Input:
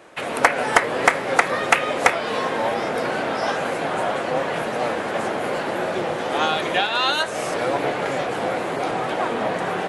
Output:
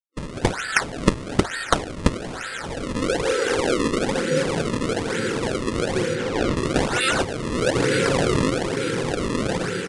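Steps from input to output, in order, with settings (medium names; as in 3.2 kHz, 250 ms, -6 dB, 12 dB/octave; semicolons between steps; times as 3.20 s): high-pass sweep 1.4 kHz -> 100 Hz, 2.29–4.77 s; level rider gain up to 3.5 dB; word length cut 6-bit, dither none; FFT band-reject 550–1300 Hz; decimation with a swept rate 33×, swing 160% 1.1 Hz; 6.15–6.56 s: distance through air 60 m; resampled via 22.05 kHz; 7.75–8.50 s: level flattener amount 100%; trim -1 dB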